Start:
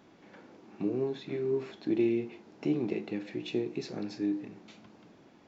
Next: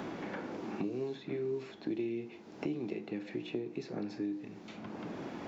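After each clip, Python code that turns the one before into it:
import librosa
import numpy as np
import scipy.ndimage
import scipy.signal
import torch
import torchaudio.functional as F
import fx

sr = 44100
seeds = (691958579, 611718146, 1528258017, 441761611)

y = fx.band_squash(x, sr, depth_pct=100)
y = F.gain(torch.from_numpy(y), -5.5).numpy()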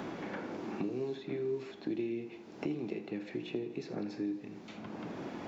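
y = fx.echo_feedback(x, sr, ms=81, feedback_pct=59, wet_db=-15)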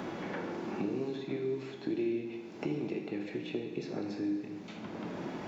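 y = fx.rev_gated(x, sr, seeds[0], gate_ms=450, shape='falling', drr_db=4.0)
y = F.gain(torch.from_numpy(y), 1.0).numpy()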